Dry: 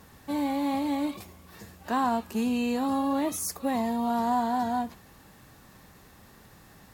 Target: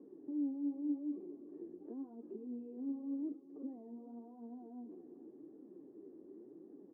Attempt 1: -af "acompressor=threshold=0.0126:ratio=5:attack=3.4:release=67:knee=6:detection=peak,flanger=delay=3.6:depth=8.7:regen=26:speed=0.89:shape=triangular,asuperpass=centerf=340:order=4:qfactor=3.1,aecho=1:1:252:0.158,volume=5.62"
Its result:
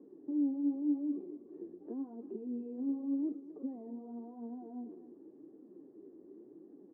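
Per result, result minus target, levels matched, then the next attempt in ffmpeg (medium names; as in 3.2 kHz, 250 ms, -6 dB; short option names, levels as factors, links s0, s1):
echo 161 ms early; compression: peak gain reduction -5 dB
-af "acompressor=threshold=0.0126:ratio=5:attack=3.4:release=67:knee=6:detection=peak,flanger=delay=3.6:depth=8.7:regen=26:speed=0.89:shape=triangular,asuperpass=centerf=340:order=4:qfactor=3.1,aecho=1:1:413:0.158,volume=5.62"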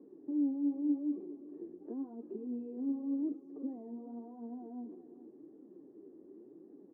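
compression: peak gain reduction -5 dB
-af "acompressor=threshold=0.00596:ratio=5:attack=3.4:release=67:knee=6:detection=peak,flanger=delay=3.6:depth=8.7:regen=26:speed=0.89:shape=triangular,asuperpass=centerf=340:order=4:qfactor=3.1,aecho=1:1:413:0.158,volume=5.62"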